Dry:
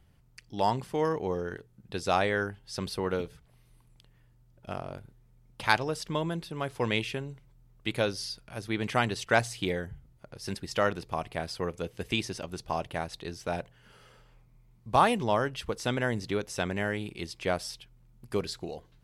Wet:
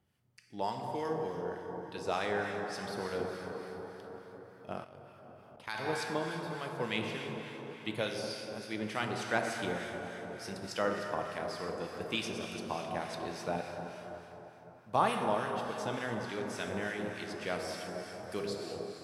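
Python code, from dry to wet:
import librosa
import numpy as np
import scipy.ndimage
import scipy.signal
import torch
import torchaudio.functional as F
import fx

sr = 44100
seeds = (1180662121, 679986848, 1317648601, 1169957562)

y = scipy.signal.sosfilt(scipy.signal.butter(2, 140.0, 'highpass', fs=sr, output='sos'), x)
y = fx.rev_plate(y, sr, seeds[0], rt60_s=4.9, hf_ratio=0.6, predelay_ms=0, drr_db=1.0)
y = fx.level_steps(y, sr, step_db=16, at=(4.84, 5.86))
y = fx.harmonic_tremolo(y, sr, hz=3.4, depth_pct=50, crossover_hz=1300.0)
y = fx.rider(y, sr, range_db=3, speed_s=2.0)
y = y * 10.0 ** (-5.5 / 20.0)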